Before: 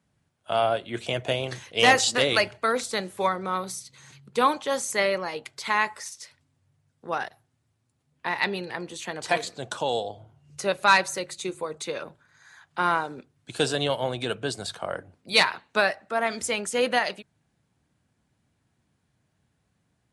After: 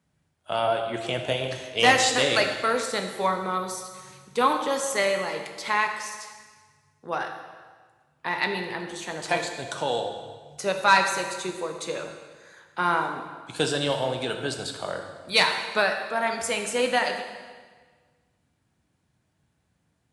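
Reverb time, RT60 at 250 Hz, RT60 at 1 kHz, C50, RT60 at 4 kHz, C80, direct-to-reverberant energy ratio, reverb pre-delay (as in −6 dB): 1.5 s, 1.5 s, 1.5 s, 6.0 dB, 1.4 s, 7.5 dB, 4.0 dB, 5 ms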